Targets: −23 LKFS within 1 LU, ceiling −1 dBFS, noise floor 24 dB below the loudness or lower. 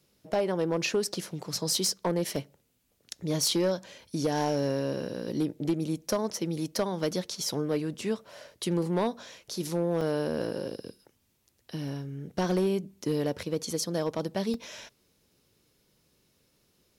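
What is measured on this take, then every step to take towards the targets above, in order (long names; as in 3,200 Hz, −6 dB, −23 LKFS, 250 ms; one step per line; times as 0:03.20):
share of clipped samples 0.6%; peaks flattened at −20.0 dBFS; number of dropouts 5; longest dropout 2.5 ms; integrated loudness −30.5 LKFS; sample peak −20.0 dBFS; target loudness −23.0 LKFS
→ clipped peaks rebuilt −20 dBFS
repair the gap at 0:02.36/0:03.51/0:10.01/0:11.88/0:14.54, 2.5 ms
level +7.5 dB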